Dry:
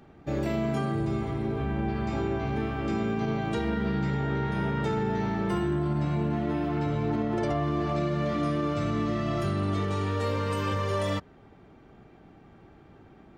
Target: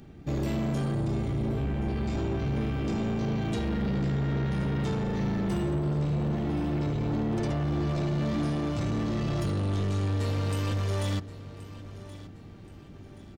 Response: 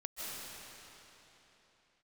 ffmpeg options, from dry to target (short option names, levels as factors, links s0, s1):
-af "equalizer=f=970:t=o:w=2.8:g=-13,asoftclip=type=tanh:threshold=0.0211,aecho=1:1:1076|2152|3228:0.158|0.0618|0.0241,volume=2.66"